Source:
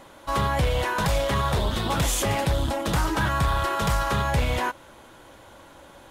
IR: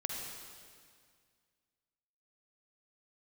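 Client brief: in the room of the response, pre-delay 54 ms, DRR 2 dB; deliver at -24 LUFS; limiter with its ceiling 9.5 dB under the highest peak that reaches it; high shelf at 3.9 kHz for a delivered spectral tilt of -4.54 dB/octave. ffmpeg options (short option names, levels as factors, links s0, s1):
-filter_complex "[0:a]highshelf=f=3900:g=5.5,alimiter=limit=0.0944:level=0:latency=1,asplit=2[s0][s1];[1:a]atrim=start_sample=2205,adelay=54[s2];[s1][s2]afir=irnorm=-1:irlink=0,volume=0.631[s3];[s0][s3]amix=inputs=2:normalize=0,volume=1.33"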